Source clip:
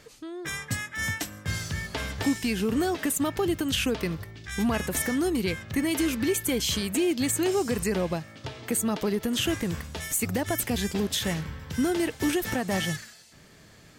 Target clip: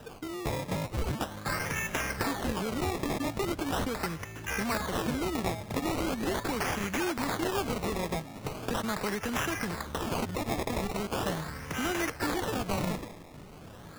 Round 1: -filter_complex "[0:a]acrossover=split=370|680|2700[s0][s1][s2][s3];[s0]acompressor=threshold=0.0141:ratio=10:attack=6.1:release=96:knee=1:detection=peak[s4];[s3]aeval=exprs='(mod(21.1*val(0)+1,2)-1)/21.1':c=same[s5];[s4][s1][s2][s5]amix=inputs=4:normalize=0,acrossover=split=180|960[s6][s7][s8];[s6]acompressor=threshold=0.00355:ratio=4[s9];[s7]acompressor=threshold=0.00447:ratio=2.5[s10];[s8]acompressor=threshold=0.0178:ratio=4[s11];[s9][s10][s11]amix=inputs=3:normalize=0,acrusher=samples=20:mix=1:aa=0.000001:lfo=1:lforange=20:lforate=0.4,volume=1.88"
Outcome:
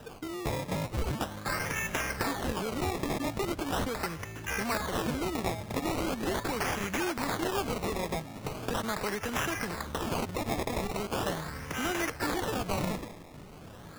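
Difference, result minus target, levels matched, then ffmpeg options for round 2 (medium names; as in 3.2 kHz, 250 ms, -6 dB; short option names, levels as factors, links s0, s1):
compression: peak gain reduction +8.5 dB
-filter_complex "[0:a]acrossover=split=370|680|2700[s0][s1][s2][s3];[s0]acompressor=threshold=0.0422:ratio=10:attack=6.1:release=96:knee=1:detection=peak[s4];[s3]aeval=exprs='(mod(21.1*val(0)+1,2)-1)/21.1':c=same[s5];[s4][s1][s2][s5]amix=inputs=4:normalize=0,acrossover=split=180|960[s6][s7][s8];[s6]acompressor=threshold=0.00355:ratio=4[s9];[s7]acompressor=threshold=0.00447:ratio=2.5[s10];[s8]acompressor=threshold=0.0178:ratio=4[s11];[s9][s10][s11]amix=inputs=3:normalize=0,acrusher=samples=20:mix=1:aa=0.000001:lfo=1:lforange=20:lforate=0.4,volume=1.88"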